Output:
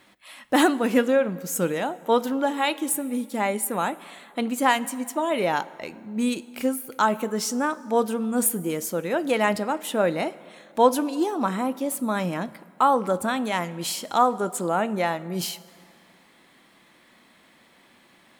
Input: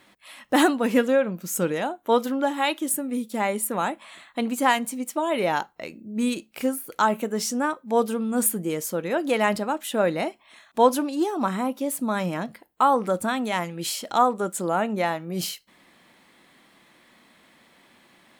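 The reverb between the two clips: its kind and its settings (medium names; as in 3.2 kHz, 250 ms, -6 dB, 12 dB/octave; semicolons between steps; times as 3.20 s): plate-style reverb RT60 2.3 s, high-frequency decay 0.7×, DRR 17.5 dB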